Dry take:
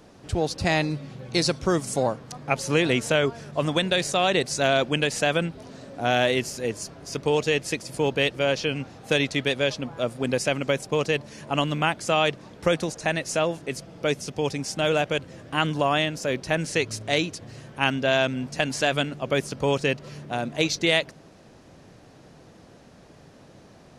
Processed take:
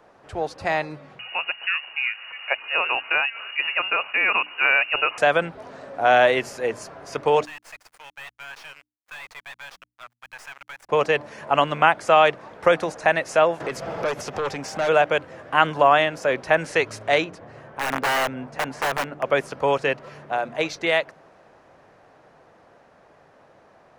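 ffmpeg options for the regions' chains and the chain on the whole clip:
-filter_complex "[0:a]asettb=1/sr,asplit=3[s0][s1][s2];[s0]atrim=end=1.194[s3];[s1]atrim=start=1.19:end=5.18,asetpts=PTS-STARTPTS,afade=t=in:d=0.004:c=qsin,afade=t=out:st=3.986:d=0.004:c=qsin,acompressor=mode=upward:threshold=0.0562:ratio=2.5:attack=3.2:release=140:knee=2.83:detection=peak,lowpass=f=2600:t=q:w=0.5098,lowpass=f=2600:t=q:w=0.6013,lowpass=f=2600:t=q:w=0.9,lowpass=f=2600:t=q:w=2.563,afreqshift=-3000[s4];[s2]atrim=start=5.176[s5];[s3][s4]acrossfade=d=0.004:c1=hsin:c2=qsin[s6];[s6][s5]acrossfade=d=0.004:c1=qsin:c2=hsin,asettb=1/sr,asplit=3[s7][s8][s9];[s7]atrim=end=7.454[s10];[s8]atrim=start=7.45:end=10.89,asetpts=PTS-STARTPTS,afade=t=in:d=0.004:c=qsin,afade=t=out:st=3.436:d=0.004:c=qsin,highpass=f=1200:w=0.5412,highpass=f=1200:w=1.3066,aeval=exprs='sgn(val(0))*max(abs(val(0))-0.00891,0)':c=same,aeval=exprs='(tanh(89.1*val(0)+0.65)-tanh(0.65))/89.1':c=same[s11];[s9]atrim=start=10.886[s12];[s10][s11]acrossfade=d=0.004:c1=hsin:c2=qsin[s13];[s13][s12]acrossfade=d=0.004:c1=qsin:c2=hsin,asettb=1/sr,asplit=3[s14][s15][s16];[s14]atrim=end=13.604[s17];[s15]atrim=start=13.6:end=14.89,asetpts=PTS-STARTPTS,afade=t=in:d=0.004:c=qsin,afade=t=out:st=1.286:d=0.004:c=qsin,equalizer=f=9200:w=5.9:g=-8,aeval=exprs='0.282*sin(PI/2*2.82*val(0)/0.282)':c=same,acompressor=threshold=0.0447:ratio=8:attack=3.2:release=140:knee=1:detection=peak[s18];[s16]atrim=start=14.886[s19];[s17][s18]acrossfade=d=0.004:c1=hsin:c2=qsin[s20];[s20][s19]acrossfade=d=0.004:c1=qsin:c2=hsin,asettb=1/sr,asplit=3[s21][s22][s23];[s21]atrim=end=17.244[s24];[s22]atrim=start=17.24:end=19.23,asetpts=PTS-STARTPTS,afade=t=in:d=0.004:c=qsin,afade=t=out:st=1.986:d=0.004:c=qsin,highshelf=f=2200:g=-10,aeval=exprs='(mod(11.2*val(0)+1,2)-1)/11.2':c=same[s25];[s23]atrim=start=19.226[s26];[s24][s25]acrossfade=d=0.004:c1=hsin:c2=qsin[s27];[s27][s26]acrossfade=d=0.004:c1=qsin:c2=hsin,acrossover=split=520 2100:gain=0.178 1 0.158[s28][s29][s30];[s28][s29][s30]amix=inputs=3:normalize=0,bandreject=f=60:t=h:w=6,bandreject=f=120:t=h:w=6,bandreject=f=180:t=h:w=6,bandreject=f=240:t=h:w=6,bandreject=f=300:t=h:w=6,dynaudnorm=f=410:g=21:m=2,volume=1.58"

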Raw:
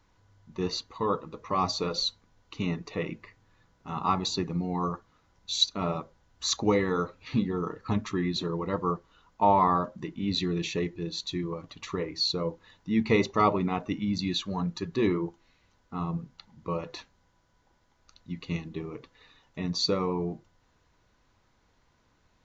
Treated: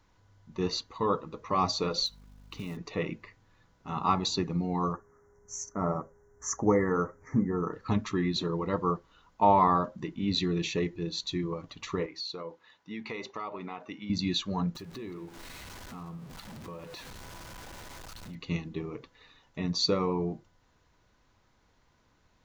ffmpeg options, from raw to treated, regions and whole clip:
-filter_complex "[0:a]asettb=1/sr,asplit=3[s0][s1][s2];[s0]atrim=end=2.064[s3];[s1]atrim=start=2.06:end=2.77,asetpts=PTS-STARTPTS,afade=t=in:d=0.004:c=qsin,afade=t=out:st=0.706:d=0.004:c=qsin,aeval=exprs='val(0)+0.00251*(sin(2*PI*50*n/s)+sin(2*PI*2*50*n/s)/2+sin(2*PI*3*50*n/s)/3+sin(2*PI*4*50*n/s)/4+sin(2*PI*5*50*n/s)/5)':c=same,acompressor=threshold=0.0178:ratio=4:attack=3.2:release=140:knee=1:detection=peak,acrusher=bits=5:mode=log:mix=0:aa=0.000001[s4];[s2]atrim=start=2.766[s5];[s3][s4]acrossfade=d=0.004:c1=hsin:c2=qsin[s6];[s6][s5]acrossfade=d=0.004:c1=qsin:c2=hsin,asettb=1/sr,asplit=3[s7][s8][s9];[s7]atrim=end=4.934[s10];[s8]atrim=start=4.93:end=7.73,asetpts=PTS-STARTPTS,afade=t=in:d=0.004:c=qsin,afade=t=out:st=2.796:d=0.004:c=qsin,asuperstop=centerf=3400:order=12:qfactor=0.91,aeval=exprs='val(0)+0.000891*sin(2*PI*410*n/s)':c=same[s11];[s9]atrim=start=7.726[s12];[s10][s11]acrossfade=d=0.004:c1=hsin:c2=qsin[s13];[s13][s12]acrossfade=d=0.004:c1=qsin:c2=hsin,asettb=1/sr,asplit=3[s14][s15][s16];[s14]atrim=end=12.064[s17];[s15]atrim=start=12.06:end=14.1,asetpts=PTS-STARTPTS,afade=t=in:d=0.004:c=qsin,afade=t=out:st=2.036:d=0.004:c=qsin,highpass=f=780:p=1,highshelf=f=5800:g=-11.5,acompressor=threshold=0.02:ratio=5:attack=3.2:release=140:knee=1:detection=peak[s18];[s16]atrim=start=14.096[s19];[s17][s18]acrossfade=d=0.004:c1=hsin:c2=qsin[s20];[s20][s19]acrossfade=d=0.004:c1=qsin:c2=hsin,asettb=1/sr,asplit=3[s21][s22][s23];[s21]atrim=end=14.754[s24];[s22]atrim=start=14.75:end=18.35,asetpts=PTS-STARTPTS,afade=t=in:d=0.004:c=qsin,afade=t=out:st=3.596:d=0.004:c=qsin,aeval=exprs='val(0)+0.5*0.01*sgn(val(0))':c=same,acompressor=threshold=0.00708:ratio=3:attack=3.2:release=140:knee=1:detection=peak,aecho=1:1:172:0.15,atrim=end_sample=158760[s25];[s23]atrim=start=18.346[s26];[s24][s25]acrossfade=d=0.004:c1=hsin:c2=qsin[s27];[s27][s26]acrossfade=d=0.004:c1=qsin:c2=hsin"

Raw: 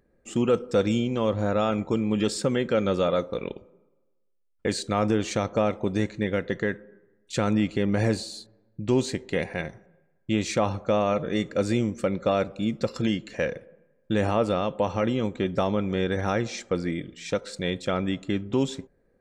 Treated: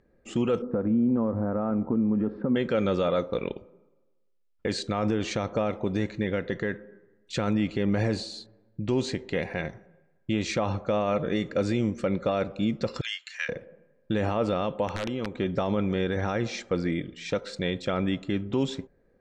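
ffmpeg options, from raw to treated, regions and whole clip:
-filter_complex "[0:a]asettb=1/sr,asplit=3[s0][s1][s2];[s0]atrim=end=0.624[s3];[s1]atrim=start=0.62:end=2.56,asetpts=PTS-STARTPTS,afade=t=in:d=0.004:c=qsin,afade=t=out:st=1.936:d=0.004:c=qsin,acompressor=threshold=0.0447:ratio=5:attack=3.2:release=140:knee=1:detection=peak,lowpass=f=1400:w=0.5412,lowpass=f=1400:w=1.3066,equalizer=f=240:t=o:w=0.41:g=10.5[s4];[s2]atrim=start=2.556[s5];[s3][s4]acrossfade=d=0.004:c1=hsin:c2=qsin[s6];[s6][s5]acrossfade=d=0.004:c1=qsin:c2=hsin,asettb=1/sr,asplit=3[s7][s8][s9];[s7]atrim=end=13.014[s10];[s8]atrim=start=13.01:end=13.49,asetpts=PTS-STARTPTS,afade=t=in:d=0.004:c=qsin,afade=t=out:st=0.476:d=0.004:c=qsin,highpass=f=1400:w=0.5412,highpass=f=1400:w=1.3066,highshelf=f=6300:g=10.5[s11];[s9]atrim=start=13.486[s12];[s10][s11]acrossfade=d=0.004:c1=hsin:c2=qsin[s13];[s13][s12]acrossfade=d=0.004:c1=qsin:c2=hsin,asettb=1/sr,asplit=3[s14][s15][s16];[s14]atrim=end=14.884[s17];[s15]atrim=start=14.88:end=15.38,asetpts=PTS-STARTPTS,afade=t=in:d=0.004:c=qsin,afade=t=out:st=0.496:d=0.004:c=qsin,bass=f=250:g=-3,treble=f=4000:g=-4,acompressor=threshold=0.0398:ratio=5:attack=3.2:release=140:knee=1:detection=peak,aeval=exprs='(mod(15*val(0)+1,2)-1)/15':c=same[s18];[s16]atrim=start=15.376[s19];[s17][s18]acrossfade=d=0.004:c1=hsin:c2=qsin[s20];[s20][s19]acrossfade=d=0.004:c1=qsin:c2=hsin,lowpass=5200,alimiter=limit=0.119:level=0:latency=1:release=38,volume=1.19"

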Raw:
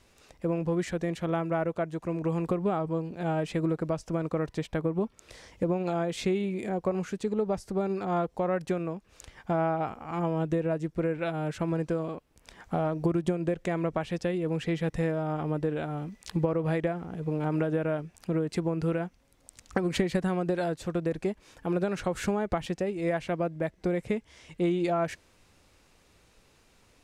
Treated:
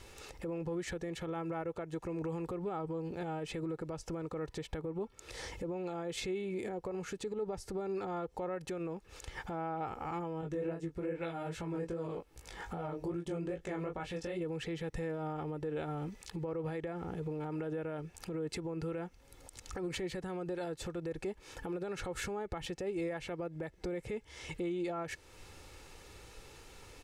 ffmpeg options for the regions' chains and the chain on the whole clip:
-filter_complex "[0:a]asettb=1/sr,asplit=3[s0][s1][s2];[s0]atrim=end=10.414[s3];[s1]atrim=start=10.41:end=14.41,asetpts=PTS-STARTPTS,afade=t=in:d=0.004:c=qsin,afade=t=out:st=3.996:d=0.004:c=qsin,flanger=delay=16.5:depth=6.2:speed=2.5,asplit=2[s4][s5];[s5]adelay=18,volume=0.501[s6];[s4][s6]amix=inputs=2:normalize=0,atrim=end_sample=176400[s7];[s2]atrim=start=14.406[s8];[s3][s7]acrossfade=d=0.004:c1=hsin:c2=qsin[s9];[s9][s8]acrossfade=d=0.004:c1=qsin:c2=hsin,acompressor=threshold=0.00501:ratio=2,alimiter=level_in=4.47:limit=0.0631:level=0:latency=1:release=93,volume=0.224,aecho=1:1:2.3:0.45,volume=2.24"

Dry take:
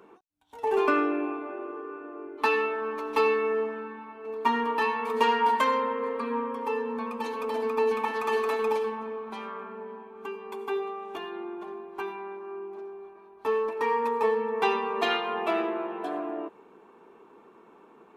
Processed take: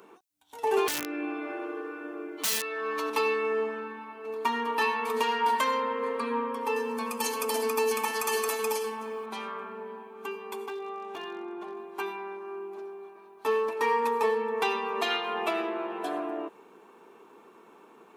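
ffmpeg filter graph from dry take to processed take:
-filter_complex "[0:a]asettb=1/sr,asplit=3[s0][s1][s2];[s0]atrim=end=0.864[s3];[s1]atrim=start=0.86:end=3.1,asetpts=PTS-STARTPTS,afade=t=in:d=0.004:c=qsin,afade=t=out:st=2.236:d=0.004:c=qsin,equalizer=f=3900:t=o:w=2.1:g=5.5,aecho=1:1:6.3:0.84,atrim=end_sample=98784,aeval=exprs='(mod(5.96*val(0)+1,2)-1)/5.96':c=same[s4];[s2]atrim=start=3.096[s5];[s3][s4]acrossfade=d=0.004:c1=hsin:c2=qsin[s6];[s6][s5]acrossfade=d=0.004:c1=qsin:c2=hsin,asettb=1/sr,asplit=3[s7][s8][s9];[s7]atrim=end=6.764[s10];[s8]atrim=start=6.76:end=9.26,asetpts=PTS-STARTPTS,afade=t=in:d=0.004:c=qsin,afade=t=out:st=2.496:d=0.004:c=qsin,bass=f=250:g=0,treble=f=4000:g=13,bandreject=f=3800:w=6.1[s11];[s9]atrim=start=9.256[s12];[s10][s11]acrossfade=d=0.004:c1=hsin:c2=qsin[s13];[s13][s12]acrossfade=d=0.004:c1=qsin:c2=hsin,asettb=1/sr,asplit=3[s14][s15][s16];[s14]atrim=end=10.664[s17];[s15]atrim=start=10.66:end=11.77,asetpts=PTS-STARTPTS,afade=t=in:d=0.004:c=qsin,afade=t=out:st=1.106:d=0.004:c=qsin,lowpass=f=3900:p=1,acompressor=threshold=0.02:ratio=4:attack=3.2:release=140:knee=1:detection=peak,volume=37.6,asoftclip=hard,volume=0.0266[s18];[s16]atrim=start=11.766[s19];[s17][s18]acrossfade=d=0.004:c1=hsin:c2=qsin[s20];[s20][s19]acrossfade=d=0.004:c1=qsin:c2=hsin,highpass=f=140:p=1,highshelf=f=3600:g=11.5,alimiter=limit=0.168:level=0:latency=1:release=488"

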